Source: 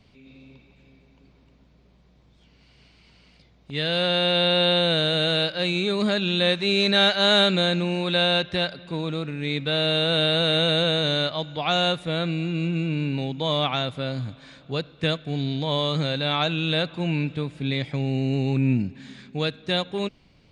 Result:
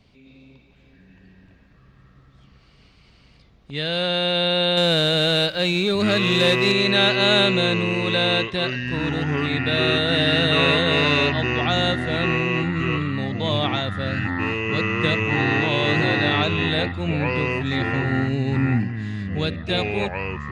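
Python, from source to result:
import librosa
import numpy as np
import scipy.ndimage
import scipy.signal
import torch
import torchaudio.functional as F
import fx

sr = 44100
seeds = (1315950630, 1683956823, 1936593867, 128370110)

y = fx.echo_pitch(x, sr, ms=723, semitones=-6, count=2, db_per_echo=-3.0)
y = fx.leveller(y, sr, passes=1, at=(4.77, 6.72))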